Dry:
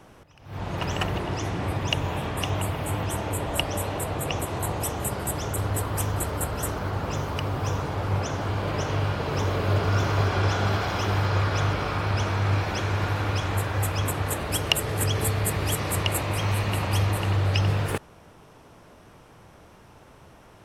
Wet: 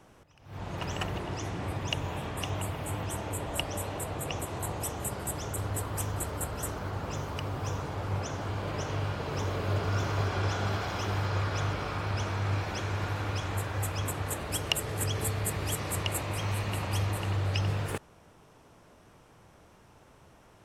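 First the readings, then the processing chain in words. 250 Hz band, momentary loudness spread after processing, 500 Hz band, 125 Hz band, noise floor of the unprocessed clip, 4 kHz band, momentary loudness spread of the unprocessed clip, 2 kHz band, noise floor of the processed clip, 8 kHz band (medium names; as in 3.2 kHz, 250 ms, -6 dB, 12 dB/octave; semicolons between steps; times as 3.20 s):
-6.5 dB, 5 LU, -6.5 dB, -6.5 dB, -51 dBFS, -6.0 dB, 5 LU, -6.5 dB, -58 dBFS, -4.5 dB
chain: peaking EQ 7.3 kHz +3.5 dB 0.61 oct; trim -6.5 dB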